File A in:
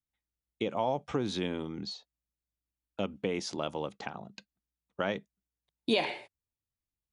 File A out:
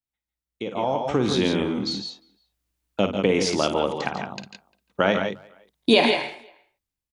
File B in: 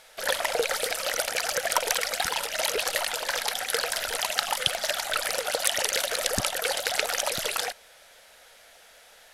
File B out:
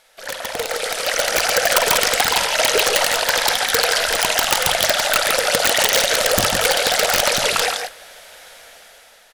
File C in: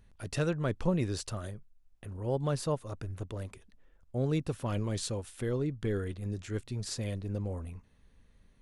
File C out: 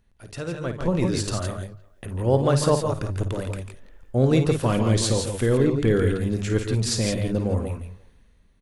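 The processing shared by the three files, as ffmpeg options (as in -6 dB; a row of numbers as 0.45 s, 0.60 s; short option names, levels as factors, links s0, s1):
-filter_complex "[0:a]asplit=2[s0][s1];[s1]aecho=0:1:53|145|166:0.316|0.316|0.422[s2];[s0][s2]amix=inputs=2:normalize=0,acrossover=split=9300[s3][s4];[s4]acompressor=threshold=0.00631:ratio=4:attack=1:release=60[s5];[s3][s5]amix=inputs=2:normalize=0,aeval=exprs='(mod(5.62*val(0)+1,2)-1)/5.62':c=same,dynaudnorm=f=220:g=9:m=5.62,bandreject=f=50:t=h:w=6,bandreject=f=100:t=h:w=6,bandreject=f=150:t=h:w=6,asplit=2[s6][s7];[s7]adelay=350,highpass=300,lowpass=3400,asoftclip=type=hard:threshold=0.282,volume=0.0447[s8];[s6][s8]amix=inputs=2:normalize=0,volume=0.75"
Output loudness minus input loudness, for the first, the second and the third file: +11.0 LU, +10.0 LU, +11.0 LU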